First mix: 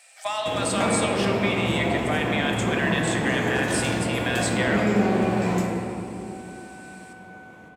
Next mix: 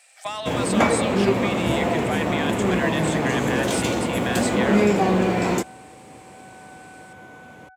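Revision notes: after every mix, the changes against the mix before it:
first sound +10.0 dB; reverb: off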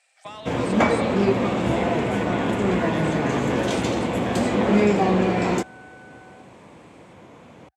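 speech -8.0 dB; second sound: entry -1.45 s; master: add distance through air 51 m

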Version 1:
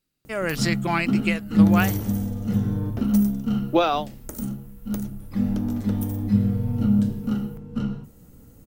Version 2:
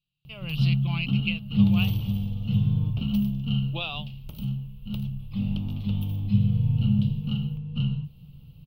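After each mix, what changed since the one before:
speech -6.5 dB; master: add FFT filter 100 Hz 0 dB, 150 Hz +10 dB, 240 Hz -14 dB, 380 Hz -16 dB, 1.1 kHz -8 dB, 1.8 kHz -24 dB, 2.8 kHz +12 dB, 4.5 kHz -3 dB, 7.2 kHz -30 dB, 12 kHz -12 dB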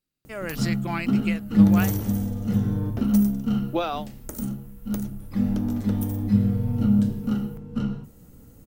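master: remove FFT filter 100 Hz 0 dB, 150 Hz +10 dB, 240 Hz -14 dB, 380 Hz -16 dB, 1.1 kHz -8 dB, 1.8 kHz -24 dB, 2.8 kHz +12 dB, 4.5 kHz -3 dB, 7.2 kHz -30 dB, 12 kHz -12 dB

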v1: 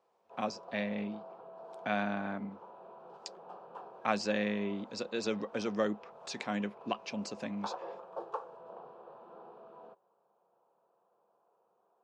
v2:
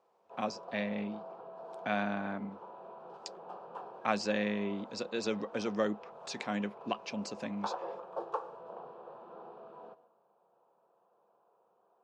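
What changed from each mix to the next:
reverb: on, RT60 0.50 s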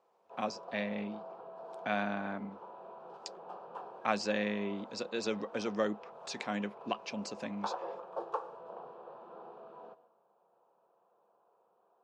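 master: add bass shelf 210 Hz -3.5 dB

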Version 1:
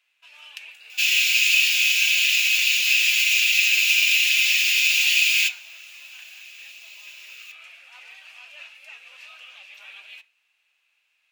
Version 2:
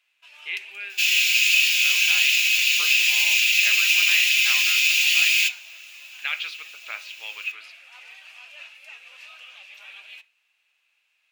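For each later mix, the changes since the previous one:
speech: unmuted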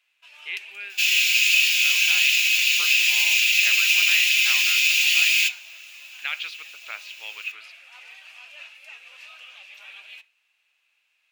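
speech: send -9.0 dB

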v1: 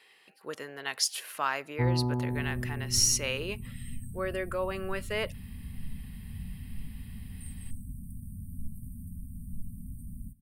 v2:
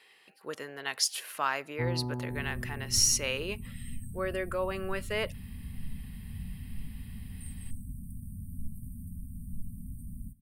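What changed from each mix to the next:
first sound -5.5 dB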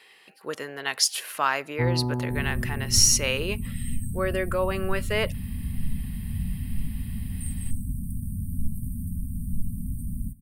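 speech +6.0 dB; first sound +7.5 dB; second sound +10.5 dB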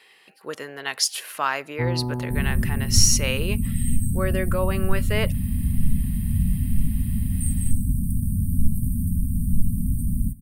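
second sound +8.0 dB

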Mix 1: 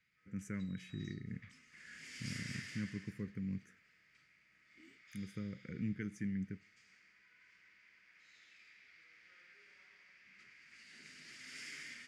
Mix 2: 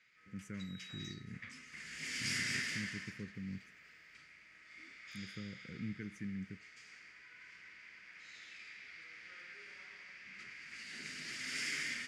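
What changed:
speech -3.5 dB; background +10.0 dB

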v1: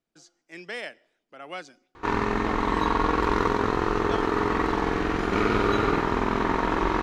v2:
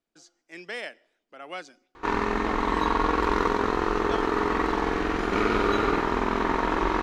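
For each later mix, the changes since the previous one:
master: add peaking EQ 120 Hz -8.5 dB 0.94 oct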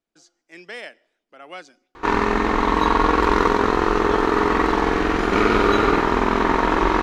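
background +6.5 dB

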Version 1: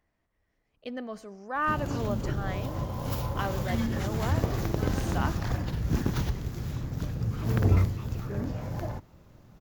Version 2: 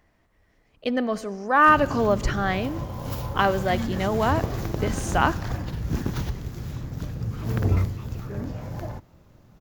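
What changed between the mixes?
speech +11.0 dB; reverb: on, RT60 1.4 s

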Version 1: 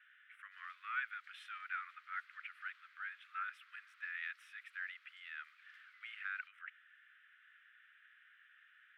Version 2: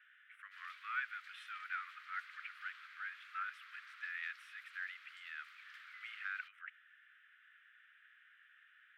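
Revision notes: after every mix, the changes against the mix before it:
background +9.5 dB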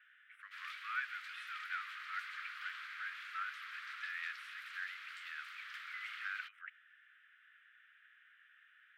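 background +8.5 dB

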